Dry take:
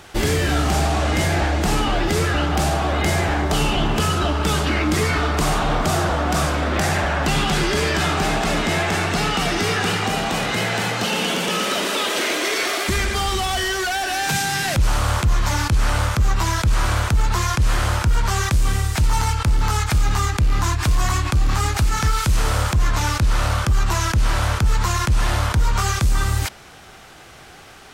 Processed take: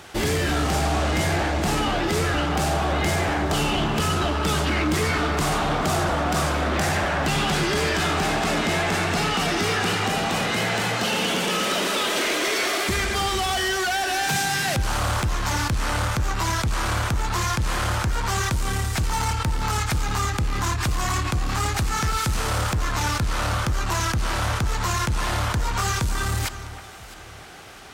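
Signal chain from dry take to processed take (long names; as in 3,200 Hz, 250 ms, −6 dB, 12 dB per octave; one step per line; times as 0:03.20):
high-pass filter 74 Hz 6 dB per octave
soft clipping −17 dBFS, distortion −16 dB
on a send: delay that swaps between a low-pass and a high-pass 328 ms, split 2,000 Hz, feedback 54%, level −12 dB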